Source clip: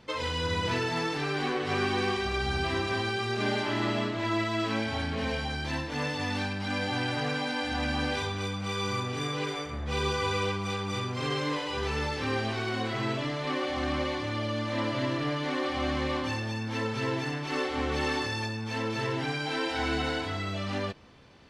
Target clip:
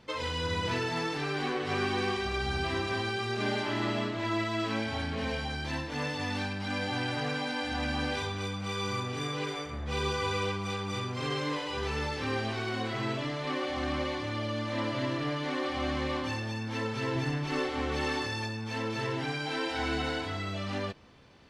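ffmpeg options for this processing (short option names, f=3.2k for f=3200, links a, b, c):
-filter_complex "[0:a]asettb=1/sr,asplit=3[a][b][c];[a]atrim=end=17.154[d];[b]atrim=start=17.15:end=17.7,asetpts=PTS-STARTPTS,afade=t=in:d=0.004:c=qsin,afade=t=out:st=0.546:d=0.004:c=qsin,lowshelf=f=160:g=11[e];[c]atrim=start=17.696[f];[d][e]acrossfade=d=0.004:c1=hsin:c2=qsin[g];[g][f]acrossfade=d=0.004:c1=qsin:c2=hsin,volume=-2dB"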